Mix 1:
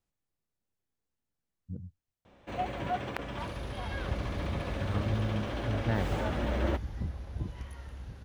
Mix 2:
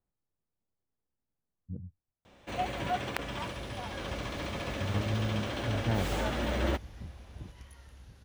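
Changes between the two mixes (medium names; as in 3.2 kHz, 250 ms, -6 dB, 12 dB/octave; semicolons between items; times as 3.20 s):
speech: add low-pass 1.1 kHz; second sound -9.0 dB; master: add treble shelf 3 kHz +10.5 dB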